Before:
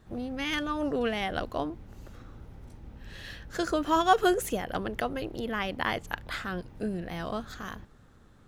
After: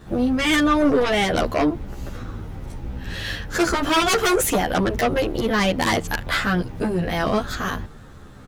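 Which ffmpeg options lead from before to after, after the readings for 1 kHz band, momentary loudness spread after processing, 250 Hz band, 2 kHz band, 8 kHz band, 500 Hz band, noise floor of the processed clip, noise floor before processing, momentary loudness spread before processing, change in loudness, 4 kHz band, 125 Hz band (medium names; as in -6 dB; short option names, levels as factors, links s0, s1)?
+6.5 dB, 16 LU, +11.0 dB, +10.5 dB, +15.0 dB, +9.5 dB, -42 dBFS, -56 dBFS, 23 LU, +9.5 dB, +11.5 dB, +13.0 dB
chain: -filter_complex "[0:a]asplit=2[s0][s1];[s1]aeval=exprs='0.355*sin(PI/2*7.08*val(0)/0.355)':c=same,volume=0.596[s2];[s0][s2]amix=inputs=2:normalize=0,asplit=2[s3][s4];[s4]adelay=11.5,afreqshift=-1.1[s5];[s3][s5]amix=inputs=2:normalize=1"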